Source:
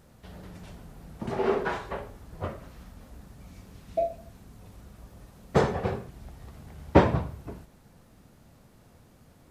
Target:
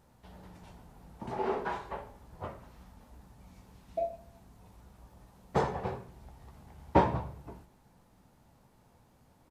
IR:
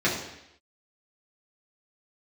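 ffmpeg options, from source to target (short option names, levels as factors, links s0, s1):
-filter_complex "[0:a]equalizer=f=890:t=o:w=0.45:g=8.5,asplit=2[s0][s1];[s1]adelay=16,volume=0.266[s2];[s0][s2]amix=inputs=2:normalize=0,asplit=2[s3][s4];[1:a]atrim=start_sample=2205,adelay=87[s5];[s4][s5]afir=irnorm=-1:irlink=0,volume=0.015[s6];[s3][s6]amix=inputs=2:normalize=0,volume=0.398"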